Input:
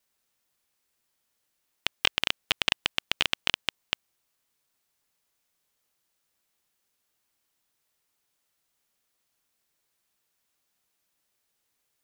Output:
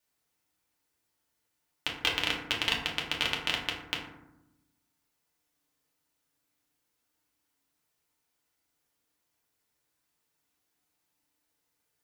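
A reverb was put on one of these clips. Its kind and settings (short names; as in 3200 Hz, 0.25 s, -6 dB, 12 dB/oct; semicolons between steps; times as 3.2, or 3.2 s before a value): FDN reverb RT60 0.88 s, low-frequency decay 1.6×, high-frequency decay 0.4×, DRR -3 dB; gain -5.5 dB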